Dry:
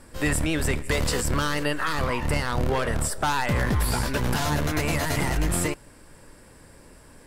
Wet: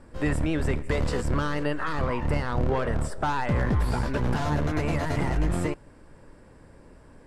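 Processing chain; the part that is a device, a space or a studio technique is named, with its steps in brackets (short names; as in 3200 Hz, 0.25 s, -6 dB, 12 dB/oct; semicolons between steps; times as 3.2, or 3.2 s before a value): through cloth (LPF 9000 Hz 12 dB/oct; high shelf 2200 Hz -13 dB)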